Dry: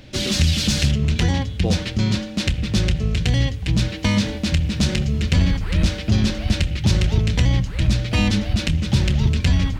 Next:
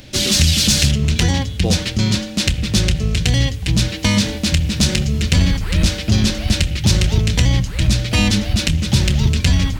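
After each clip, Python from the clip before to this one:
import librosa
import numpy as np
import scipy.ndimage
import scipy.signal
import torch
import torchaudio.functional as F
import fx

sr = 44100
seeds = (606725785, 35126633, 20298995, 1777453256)

y = fx.high_shelf(x, sr, hz=5000.0, db=11.5)
y = y * librosa.db_to_amplitude(2.5)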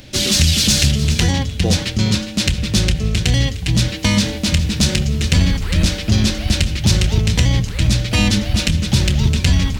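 y = x + 10.0 ** (-13.5 / 20.0) * np.pad(x, (int(411 * sr / 1000.0), 0))[:len(x)]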